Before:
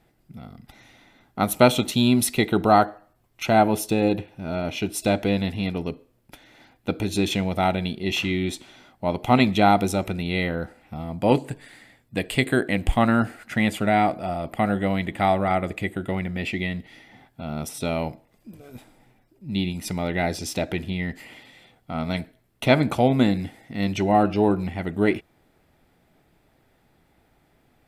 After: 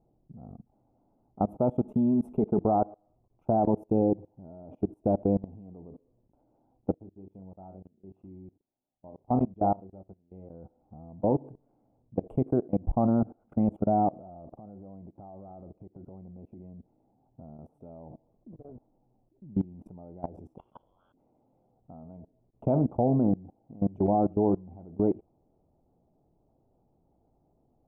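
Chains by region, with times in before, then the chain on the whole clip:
1.82–2.60 s: block-companded coder 7-bit + comb 4.7 ms, depth 44%
6.94–10.50 s: treble shelf 3.9 kHz -4.5 dB + flutter echo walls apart 5.4 m, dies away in 0.23 s + upward expansion 2.5:1, over -29 dBFS
14.52–17.59 s: compression 8:1, threshold -36 dBFS + distance through air 250 m
20.58–21.14 s: partial rectifier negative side -12 dB + frequency inversion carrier 3.4 kHz + hum notches 60/120/180/240/300/360/420/480/540/600 Hz
whole clip: inverse Chebyshev low-pass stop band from 1.7 kHz, stop band 40 dB; level held to a coarse grid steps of 23 dB

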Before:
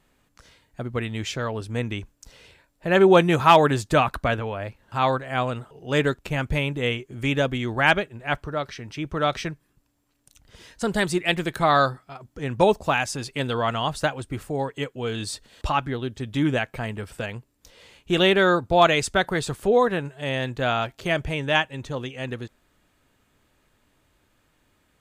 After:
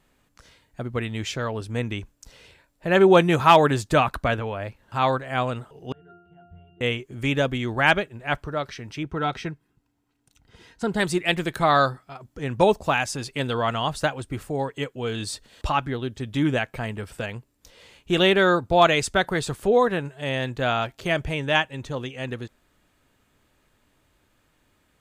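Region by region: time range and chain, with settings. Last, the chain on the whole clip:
5.92–6.81 s: de-esser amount 100% + pitch-class resonator F, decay 0.76 s + de-hum 52.77 Hz, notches 12
9.03–11.00 s: treble shelf 4.6 kHz -9.5 dB + comb of notches 580 Hz
whole clip: none

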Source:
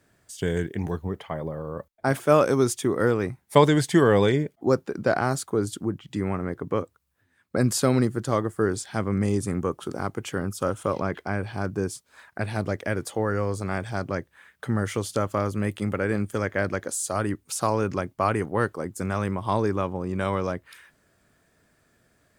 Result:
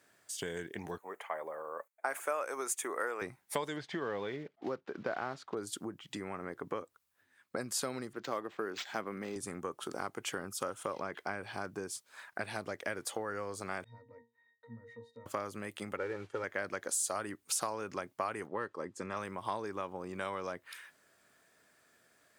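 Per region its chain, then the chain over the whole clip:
0.98–3.22 s: high-pass 570 Hz + high-order bell 4.1 kHz -10 dB 1.1 oct
3.76–5.57 s: block-companded coder 5-bit + distance through air 230 m
8.13–9.36 s: high-pass 180 Hz + decimation joined by straight lines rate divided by 4×
13.84–15.26 s: compression 3:1, threshold -27 dBFS + Butterworth band-stop 1.1 kHz, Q 6.8 + pitch-class resonator A#, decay 0.26 s
15.97–16.44 s: comb 2.2 ms, depth 68% + modulation noise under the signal 17 dB + tape spacing loss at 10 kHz 27 dB
18.47–19.17 s: distance through air 95 m + comb of notches 740 Hz
whole clip: compression 6:1, threshold -29 dBFS; high-pass 660 Hz 6 dB/octave

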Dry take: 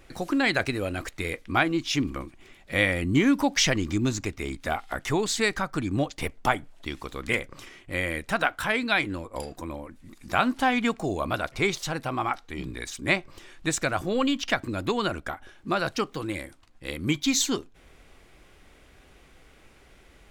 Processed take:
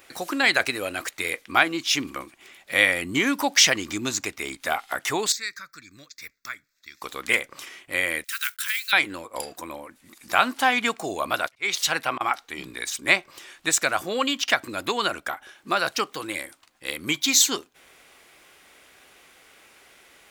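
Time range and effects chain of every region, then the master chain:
5.32–7.02 s: amplifier tone stack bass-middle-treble 5-5-5 + static phaser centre 3 kHz, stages 6
8.24–8.93 s: block-companded coder 5-bit + inverse Chebyshev high-pass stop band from 680 Hz, stop band 50 dB + peaking EQ 2.3 kHz -5 dB 1.3 oct
11.48–12.21 s: peaking EQ 2.3 kHz +6.5 dB 2 oct + slow attack 257 ms + three bands expanded up and down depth 70%
whole clip: high-pass 880 Hz 6 dB/octave; treble shelf 12 kHz +10.5 dB; trim +6 dB

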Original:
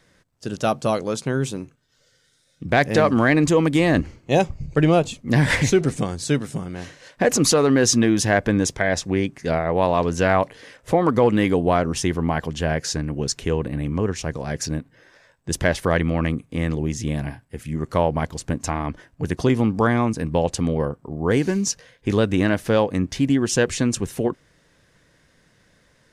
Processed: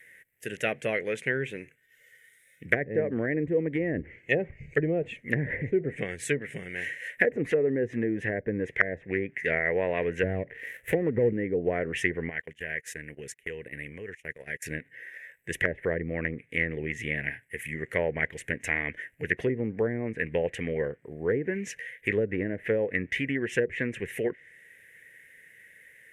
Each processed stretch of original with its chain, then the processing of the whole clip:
10.23–11.33 s: dead-time distortion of 0.16 ms + bass shelf 140 Hz +10.5 dB
12.29–14.66 s: gate -28 dBFS, range -28 dB + compression 4:1, threshold -30 dBFS
whole clip: FFT filter 110 Hz 0 dB, 290 Hz -7 dB, 450 Hz +1 dB, 810 Hz -15 dB, 1.2 kHz -20 dB, 1.9 kHz +14 dB, 3 kHz -4 dB, 4.6 kHz -27 dB, 12 kHz -2 dB; low-pass that closes with the level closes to 480 Hz, closed at -15.5 dBFS; RIAA curve recording

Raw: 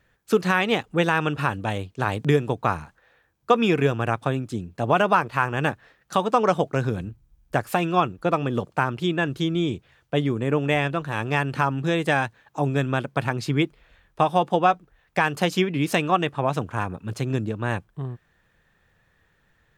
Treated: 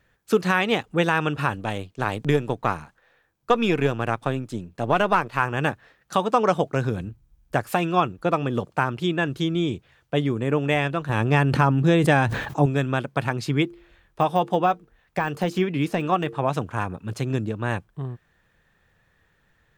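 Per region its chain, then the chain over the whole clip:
1.55–5.40 s: partial rectifier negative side -3 dB + peaking EQ 63 Hz -6 dB 1.1 oct
11.09–12.66 s: bass shelf 500 Hz +7.5 dB + decay stretcher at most 52 dB/s
13.63–16.48 s: de-hum 114.8 Hz, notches 4 + de-esser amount 90%
whole clip: none

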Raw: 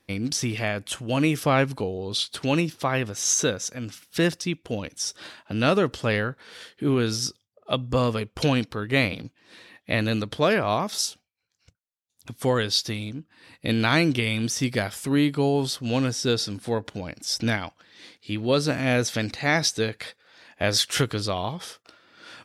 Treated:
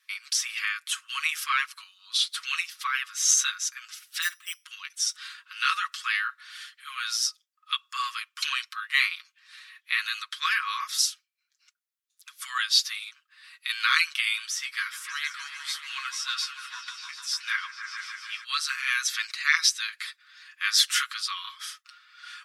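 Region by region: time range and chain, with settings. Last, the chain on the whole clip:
4.22–4.64 s: hum notches 60/120/180/240/300/360/420 Hz + careless resampling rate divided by 8×, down filtered, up hold
14.45–18.44 s: treble shelf 3.5 kHz -7 dB + doubling 13 ms -7 dB + delay with an opening low-pass 149 ms, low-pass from 750 Hz, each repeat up 1 oct, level -3 dB
whole clip: steep high-pass 1.1 kHz 96 dB/octave; comb 6.3 ms, depth 74%

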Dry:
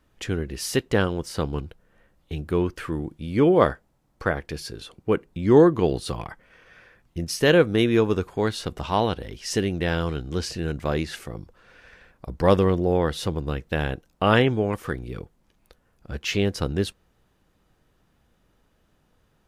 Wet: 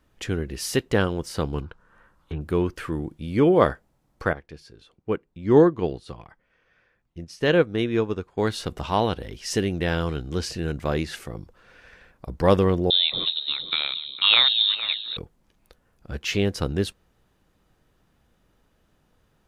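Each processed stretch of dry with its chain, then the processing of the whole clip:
1.62–2.41 s: low-pass that closes with the level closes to 1.6 kHz, closed at -29 dBFS + high-order bell 1.2 kHz +11.5 dB 1 oct
4.33–8.38 s: distance through air 52 m + upward expansion, over -35 dBFS
12.90–15.17 s: resonant low shelf 140 Hz -12 dB, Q 1.5 + echo whose repeats swap between lows and highs 229 ms, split 1 kHz, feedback 51%, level -8 dB + frequency inversion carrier 4 kHz
whole clip: none

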